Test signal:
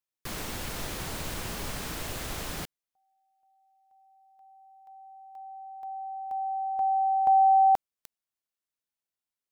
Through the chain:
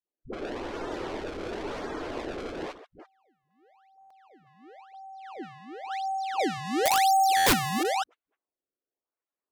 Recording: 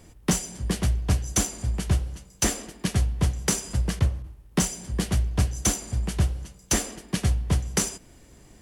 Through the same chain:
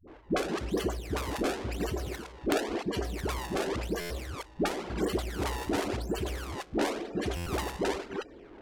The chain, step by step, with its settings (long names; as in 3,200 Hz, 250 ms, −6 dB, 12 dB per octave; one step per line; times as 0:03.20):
delay that plays each chunk backwards 199 ms, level −12.5 dB
in parallel at +2 dB: compressor whose output falls as the input rises −26 dBFS, ratio −0.5
on the sum: spectral peaks only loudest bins 64
graphic EQ with 15 bands 100 Hz +3 dB, 400 Hz +3 dB, 2,500 Hz −5 dB, 6,300 Hz −5 dB
sample-and-hold swept by an LFO 27×, swing 160% 0.95 Hz
low-pass that shuts in the quiet parts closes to 2,100 Hz, open at −15 dBFS
low shelf with overshoot 220 Hz −12.5 dB, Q 1.5
all-pass dispersion highs, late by 78 ms, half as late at 350 Hz
wrap-around overflow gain 10.5 dB
buffer that repeats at 0:04.00/0:07.36, samples 512, times 8
level −4.5 dB